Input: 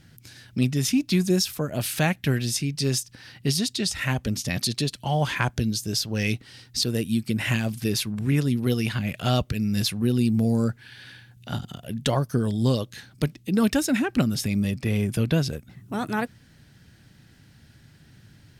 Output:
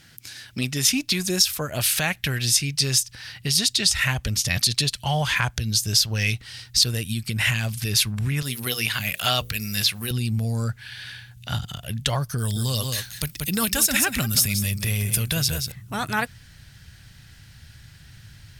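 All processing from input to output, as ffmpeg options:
ffmpeg -i in.wav -filter_complex "[0:a]asettb=1/sr,asplit=3[link_01][link_02][link_03];[link_01]atrim=end=8.424[link_04];[link_02]atrim=start=8.42:end=10.11,asetpts=PTS-STARTPTS,afade=type=in:duration=0.004:curve=qsin,afade=type=out:start_time=1.686:duration=0.004:curve=qsin,acrossover=split=4200[link_05][link_06];[link_06]acompressor=threshold=-48dB:ratio=4:attack=1:release=60[link_07];[link_05][link_07]amix=inputs=2:normalize=0,aemphasis=mode=production:type=bsi,bandreject=frequency=60:width_type=h:width=6,bandreject=frequency=120:width_type=h:width=6,bandreject=frequency=180:width_type=h:width=6,bandreject=frequency=240:width_type=h:width=6,bandreject=frequency=300:width_type=h:width=6,bandreject=frequency=360:width_type=h:width=6,bandreject=frequency=420:width_type=h:width=6,bandreject=frequency=480:width_type=h:width=6,bandreject=frequency=540:width_type=h:width=6[link_08];[link_03]atrim=start=10.106[link_09];[link_04][link_08]acrossfade=duration=0.004:curve1=hsin:curve2=qsin[link_10];[link_10][link_09]acrossfade=duration=0.004:curve1=qsin:curve2=hsin,asettb=1/sr,asplit=3[link_11][link_12][link_13];[link_11]atrim=end=12.384[link_14];[link_12]atrim=start=12.38:end=15.72,asetpts=PTS-STARTPTS,afade=type=in:duration=0.004:curve=qsin,afade=type=out:start_time=3.336:duration=0.004:curve=qsin,aemphasis=mode=production:type=50fm,aecho=1:1:181:0.316,atrim=end_sample=147294[link_15];[link_13]atrim=start=15.716[link_16];[link_14][link_15]acrossfade=duration=0.004:curve1=hsin:curve2=qsin[link_17];[link_17][link_16]acrossfade=duration=0.004:curve1=qsin:curve2=hsin,asubboost=boost=7.5:cutoff=100,alimiter=limit=-14.5dB:level=0:latency=1:release=116,tiltshelf=frequency=730:gain=-6.5,volume=2.5dB" out.wav

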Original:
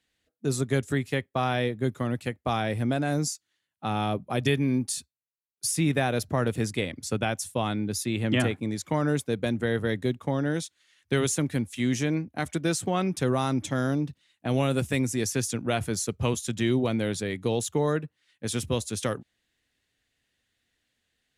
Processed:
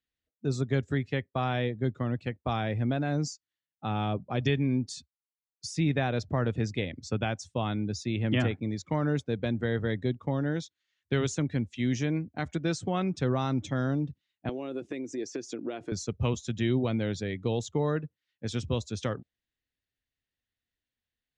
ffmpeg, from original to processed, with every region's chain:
ffmpeg -i in.wav -filter_complex "[0:a]asettb=1/sr,asplit=3[link_01][link_02][link_03];[link_01]atrim=end=14.494[link_04];[link_02]atrim=start=14.49:end=15.92,asetpts=PTS-STARTPTS,afade=type=in:duration=0.004:curve=qsin,afade=type=out:start_time=1.426:duration=0.004:curve=qsin,acompressor=threshold=-30dB:ratio=12:attack=3.2:release=140:knee=1:detection=peak,highpass=frequency=330:width_type=q:width=3.3[link_05];[link_03]atrim=start=15.916[link_06];[link_04][link_05]acrossfade=duration=0.004:curve1=hsin:curve2=qsin[link_07];[link_07][link_06]acrossfade=duration=0.004:curve1=qsin:curve2=hsin,lowpass=frequency=6500:width=0.5412,lowpass=frequency=6500:width=1.3066,afftdn=noise_reduction=12:noise_floor=-47,lowshelf=frequency=110:gain=8.5,volume=-4dB" out.wav

